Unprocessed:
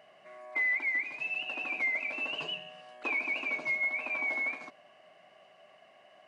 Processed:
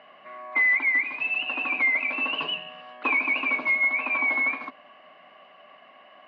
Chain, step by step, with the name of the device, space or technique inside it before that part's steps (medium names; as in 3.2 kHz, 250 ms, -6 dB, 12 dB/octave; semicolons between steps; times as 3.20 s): kitchen radio (cabinet simulation 200–3600 Hz, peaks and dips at 260 Hz +6 dB, 380 Hz -5 dB, 660 Hz -5 dB, 1.1 kHz +7 dB); trim +8 dB